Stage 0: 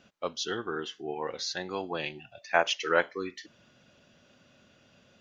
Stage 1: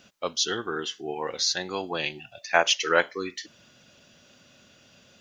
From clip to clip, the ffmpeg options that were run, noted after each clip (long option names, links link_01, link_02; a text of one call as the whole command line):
ffmpeg -i in.wav -af "highshelf=frequency=3900:gain=11.5,volume=2.5dB" out.wav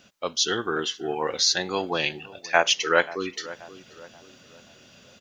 ffmpeg -i in.wav -filter_complex "[0:a]asplit=2[link_01][link_02];[link_02]adelay=531,lowpass=frequency=1500:poles=1,volume=-18dB,asplit=2[link_03][link_04];[link_04]adelay=531,lowpass=frequency=1500:poles=1,volume=0.43,asplit=2[link_05][link_06];[link_06]adelay=531,lowpass=frequency=1500:poles=1,volume=0.43,asplit=2[link_07][link_08];[link_08]adelay=531,lowpass=frequency=1500:poles=1,volume=0.43[link_09];[link_01][link_03][link_05][link_07][link_09]amix=inputs=5:normalize=0,dynaudnorm=framelen=120:gausssize=7:maxgain=4dB" out.wav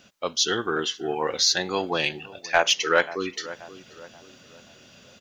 ffmpeg -i in.wav -af "asoftclip=type=tanh:threshold=-6.5dB,volume=1dB" out.wav